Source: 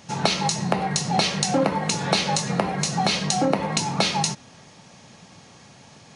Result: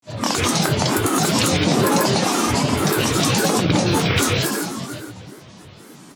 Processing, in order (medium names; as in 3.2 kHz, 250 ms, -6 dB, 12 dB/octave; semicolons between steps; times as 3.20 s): tone controls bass +4 dB, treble +3 dB; reverberation RT60 1.5 s, pre-delay 119 ms, DRR -3 dB; frequency shift +22 Hz; feedback delay 204 ms, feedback 39%, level -5 dB; granulator 146 ms, pitch spread up and down by 12 st